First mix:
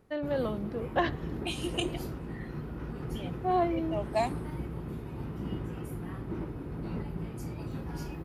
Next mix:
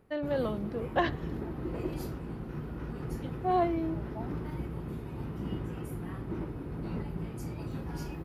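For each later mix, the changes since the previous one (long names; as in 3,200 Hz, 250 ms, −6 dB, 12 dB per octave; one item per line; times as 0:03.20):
second voice: add formant resonators in series u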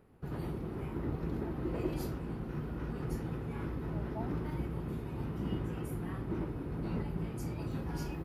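first voice: muted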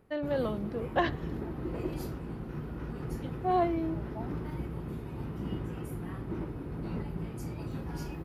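first voice: unmuted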